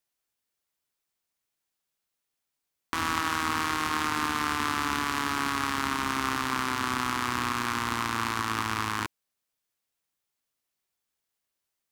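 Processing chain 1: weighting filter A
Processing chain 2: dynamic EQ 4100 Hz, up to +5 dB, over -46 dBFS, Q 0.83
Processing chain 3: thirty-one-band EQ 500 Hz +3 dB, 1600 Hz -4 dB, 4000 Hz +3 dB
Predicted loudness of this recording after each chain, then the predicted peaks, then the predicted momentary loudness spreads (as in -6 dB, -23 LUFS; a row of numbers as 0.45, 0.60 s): -28.5, -27.0, -29.0 LUFS; -11.0, -8.0, -10.0 dBFS; 2, 2, 2 LU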